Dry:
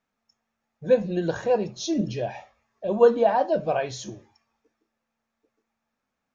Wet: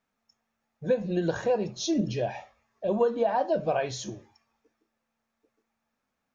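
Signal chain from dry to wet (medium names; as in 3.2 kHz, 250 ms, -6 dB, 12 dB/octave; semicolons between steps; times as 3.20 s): compression 6:1, threshold -21 dBFS, peak gain reduction 10 dB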